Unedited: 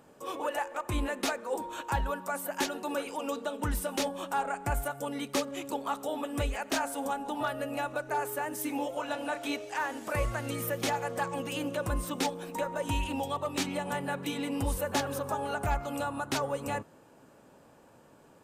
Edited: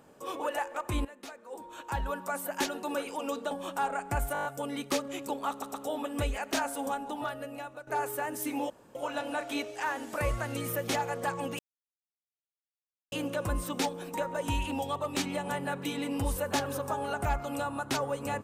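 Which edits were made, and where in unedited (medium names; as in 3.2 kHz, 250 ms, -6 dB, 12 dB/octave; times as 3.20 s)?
1.05–2.18 s: fade in quadratic, from -16 dB
3.51–4.06 s: delete
4.88 s: stutter 0.02 s, 7 plays
5.93 s: stutter 0.12 s, 3 plays
7.06–8.06 s: fade out, to -13 dB
8.89 s: insert room tone 0.25 s
11.53 s: insert silence 1.53 s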